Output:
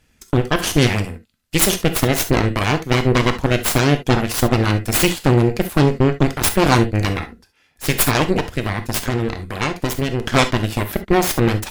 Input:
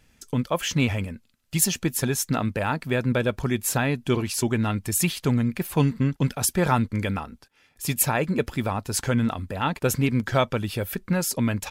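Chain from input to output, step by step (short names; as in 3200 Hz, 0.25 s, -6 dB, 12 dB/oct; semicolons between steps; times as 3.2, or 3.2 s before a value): added harmonics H 7 -29 dB, 8 -9 dB, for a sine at -6 dBFS; 8.34–10.26 compressor, threshold -19 dBFS, peak gain reduction 7.5 dB; non-linear reverb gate 90 ms flat, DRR 8 dB; gain +3 dB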